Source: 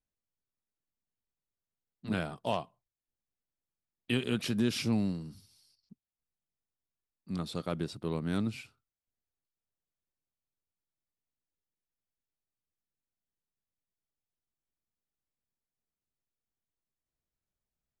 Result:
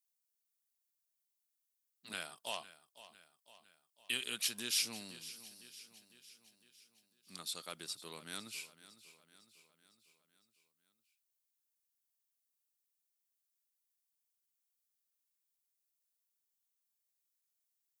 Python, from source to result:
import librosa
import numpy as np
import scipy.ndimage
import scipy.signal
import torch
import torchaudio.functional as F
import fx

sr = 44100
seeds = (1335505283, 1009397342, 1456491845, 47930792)

y = np.diff(x, prepend=0.0)
y = fx.echo_feedback(y, sr, ms=505, feedback_pct=55, wet_db=-16.0)
y = y * librosa.db_to_amplitude(7.5)